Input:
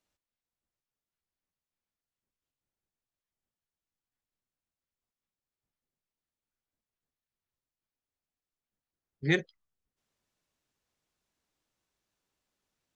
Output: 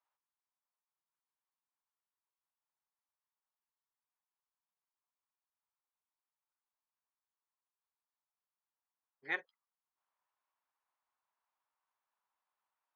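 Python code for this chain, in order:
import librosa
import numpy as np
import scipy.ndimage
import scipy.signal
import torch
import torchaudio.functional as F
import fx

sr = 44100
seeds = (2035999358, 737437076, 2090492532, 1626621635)

y = fx.ladder_bandpass(x, sr, hz=1100.0, resonance_pct=55)
y = F.gain(torch.from_numpy(y), 8.0).numpy()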